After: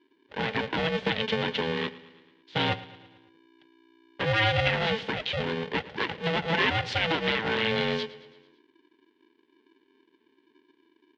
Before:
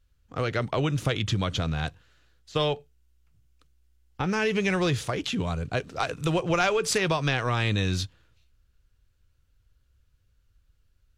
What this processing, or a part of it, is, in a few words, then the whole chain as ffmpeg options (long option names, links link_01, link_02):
ring modulator pedal into a guitar cabinet: -filter_complex "[0:a]asettb=1/sr,asplit=3[link_01][link_02][link_03];[link_01]atrim=end=2.684[link_04];[link_02]atrim=start=2.68:end=4.68,asetpts=PTS-STARTPTS,afade=type=in:duration=0.004:curve=qsin,afade=type=out:start_time=1.996:duration=0.004:curve=qsin,aecho=1:1:4.6:0.59,atrim=end_sample=88200[link_05];[link_03]atrim=start=4.676[link_06];[link_04][link_05]acrossfade=duration=0.004:curve1=hsin:curve2=qsin[link_07];[link_07][link_06]acrossfade=duration=0.004:curve1=qsin:curve2=hsin,aeval=exprs='val(0)*sgn(sin(2*PI*330*n/s))':channel_layout=same,highpass=110,equalizer=frequency=210:width_type=q:width=4:gain=-5,equalizer=frequency=710:width_type=q:width=4:gain=-6,equalizer=frequency=1200:width_type=q:width=4:gain=-8,equalizer=frequency=1900:width_type=q:width=4:gain=3,equalizer=frequency=3200:width_type=q:width=4:gain=4,lowpass=frequency=3800:width=0.5412,lowpass=frequency=3800:width=1.3066,aecho=1:1:111|222|333|444|555:0.119|0.0677|0.0386|0.022|0.0125"